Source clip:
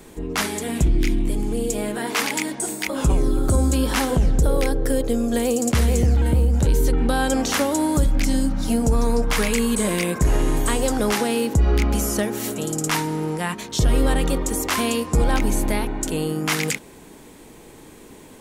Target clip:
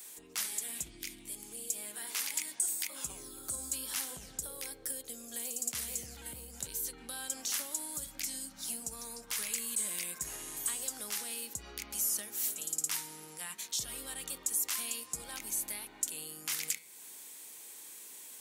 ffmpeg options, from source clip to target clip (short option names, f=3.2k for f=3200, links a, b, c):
-filter_complex "[0:a]acrossover=split=210[a][b];[b]acompressor=threshold=-38dB:ratio=2[c];[a][c]amix=inputs=2:normalize=0,aderivative,bandreject=f=161.4:t=h:w=4,bandreject=f=322.8:t=h:w=4,bandreject=f=484.2:t=h:w=4,bandreject=f=645.6:t=h:w=4,bandreject=f=807:t=h:w=4,bandreject=f=968.4:t=h:w=4,bandreject=f=1.1298k:t=h:w=4,bandreject=f=1.2912k:t=h:w=4,bandreject=f=1.4526k:t=h:w=4,bandreject=f=1.614k:t=h:w=4,bandreject=f=1.7754k:t=h:w=4,bandreject=f=1.9368k:t=h:w=4,bandreject=f=2.0982k:t=h:w=4,bandreject=f=2.2596k:t=h:w=4,bandreject=f=2.421k:t=h:w=4,bandreject=f=2.5824k:t=h:w=4,bandreject=f=2.7438k:t=h:w=4,bandreject=f=2.9052k:t=h:w=4,bandreject=f=3.0666k:t=h:w=4,bandreject=f=3.228k:t=h:w=4,bandreject=f=3.3894k:t=h:w=4,bandreject=f=3.5508k:t=h:w=4,bandreject=f=3.7122k:t=h:w=4,bandreject=f=3.8736k:t=h:w=4,bandreject=f=4.035k:t=h:w=4,bandreject=f=4.1964k:t=h:w=4,bandreject=f=4.3578k:t=h:w=4,bandreject=f=4.5192k:t=h:w=4,volume=3dB"